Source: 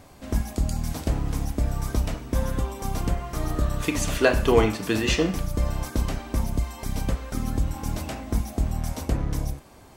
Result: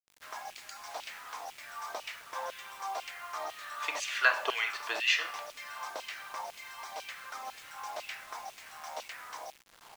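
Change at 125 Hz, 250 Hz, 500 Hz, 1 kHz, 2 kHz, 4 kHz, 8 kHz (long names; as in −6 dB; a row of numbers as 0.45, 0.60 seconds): below −40 dB, −33.0 dB, −16.5 dB, −3.5 dB, +0.5 dB, −2.0 dB, −9.0 dB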